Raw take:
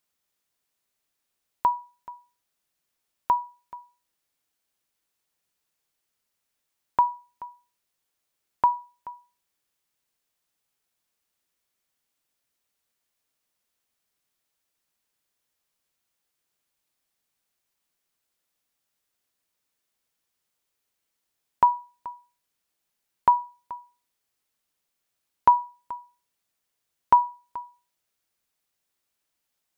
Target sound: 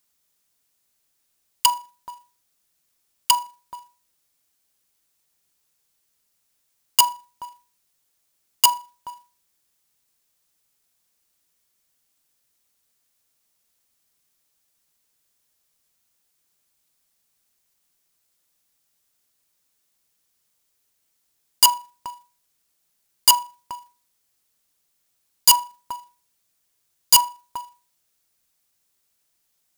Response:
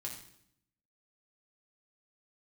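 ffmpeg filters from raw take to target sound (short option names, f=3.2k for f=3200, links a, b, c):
-af "aeval=exprs='(mod(4.73*val(0)+1,2)-1)/4.73':c=same,bass=f=250:g=4,treble=f=4k:g=7,acrusher=bits=2:mode=log:mix=0:aa=0.000001,volume=2.5dB"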